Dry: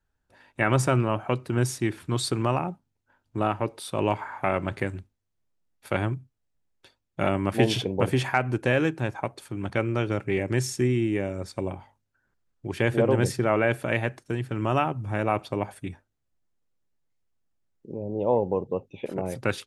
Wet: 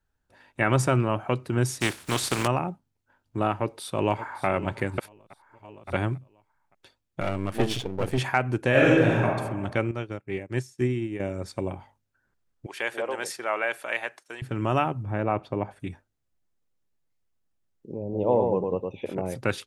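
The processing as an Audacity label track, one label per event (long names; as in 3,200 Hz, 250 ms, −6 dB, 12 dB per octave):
1.800000	2.460000	compressing power law on the bin magnitudes exponent 0.46
3.610000	4.460000	delay throw 570 ms, feedback 40%, level −14 dB
4.980000	5.930000	reverse
7.200000	8.180000	gain on one half-wave negative side −12 dB
8.700000	9.240000	thrown reverb, RT60 1.3 s, DRR −6 dB
9.910000	11.200000	expander for the loud parts 2.5 to 1, over −38 dBFS
12.660000	14.420000	high-pass filter 750 Hz
15.030000	15.800000	low-pass filter 1,500 Hz 6 dB per octave
18.020000	19.150000	single-tap delay 112 ms −4 dB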